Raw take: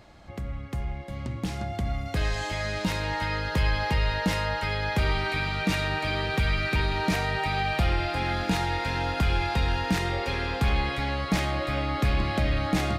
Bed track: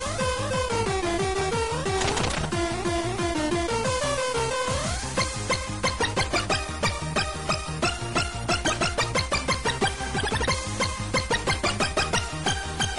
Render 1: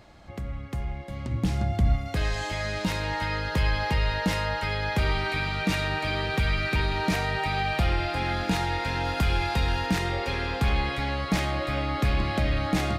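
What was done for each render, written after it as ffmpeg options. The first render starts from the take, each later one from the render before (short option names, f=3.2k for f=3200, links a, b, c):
-filter_complex "[0:a]asettb=1/sr,asplit=3[a][b][c];[a]atrim=end=1.314[d];[b]atrim=start=1.31:end=1.96,asetpts=PTS-STARTPTS,afade=t=in:d=0.004:c=qsin,afade=t=out:st=0.646:d=0.004:c=qsin,lowshelf=f=210:g=9[e];[c]atrim=start=1.956[f];[d][e]acrossfade=d=0.004:c1=hsin:c2=qsin[g];[g][f]acrossfade=d=0.004:c1=qsin:c2=hsin,asettb=1/sr,asplit=3[h][i][j];[h]atrim=end=9.054[k];[i]atrim=start=9.05:end=9.87,asetpts=PTS-STARTPTS,afade=t=in:d=0.004:c=qsin,afade=t=out:st=0.816:d=0.004:c=qsin,highshelf=f=6.8k:g=5.5[l];[j]atrim=start=9.866[m];[k][l]acrossfade=d=0.004:c1=hsin:c2=qsin[n];[n][m]acrossfade=d=0.004:c1=qsin:c2=hsin"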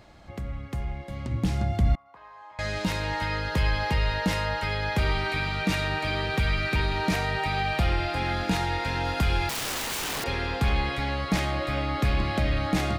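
-filter_complex "[0:a]asettb=1/sr,asplit=3[a][b][c];[a]atrim=end=1.954[d];[b]atrim=start=1.95:end=2.59,asetpts=PTS-STARTPTS,afade=t=in:d=0.004:c=qsin,afade=t=out:st=0.636:d=0.004:c=qsin,bandpass=f=1k:t=q:w=8.9[e];[c]atrim=start=2.586[f];[d][e]acrossfade=d=0.004:c1=hsin:c2=qsin[g];[g][f]acrossfade=d=0.004:c1=qsin:c2=hsin,asettb=1/sr,asplit=3[h][i][j];[h]atrim=end=9.494[k];[i]atrim=start=9.49:end=10.24,asetpts=PTS-STARTPTS,afade=t=in:d=0.004:c=qsin,afade=t=out:st=0.746:d=0.004:c=qsin,aeval=exprs='(mod(20*val(0)+1,2)-1)/20':c=same[l];[j]atrim=start=10.236[m];[k][l]acrossfade=d=0.004:c1=hsin:c2=qsin[n];[n][m]acrossfade=d=0.004:c1=qsin:c2=hsin"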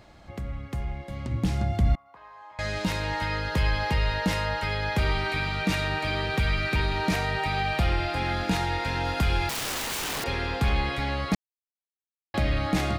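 -filter_complex "[0:a]asplit=3[a][b][c];[a]atrim=end=11.35,asetpts=PTS-STARTPTS,afade=t=out:st=11.346:d=0.004:c=hsin[d];[b]atrim=start=11.35:end=12.34,asetpts=PTS-STARTPTS,volume=0[e];[c]atrim=start=12.34,asetpts=PTS-STARTPTS,afade=t=in:d=0.004:c=hsin[f];[d][e][f]concat=n=3:v=0:a=1"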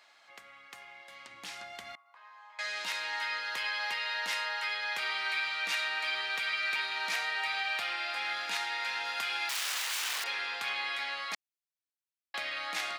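-af "highpass=1.4k,highshelf=f=7.8k:g=-5.5"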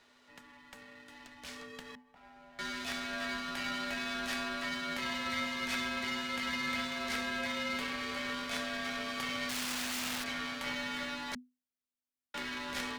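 -af "aeval=exprs='if(lt(val(0),0),0.251*val(0),val(0))':c=same,afreqshift=-250"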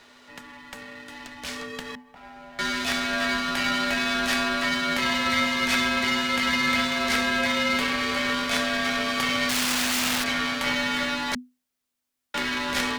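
-af "volume=12dB"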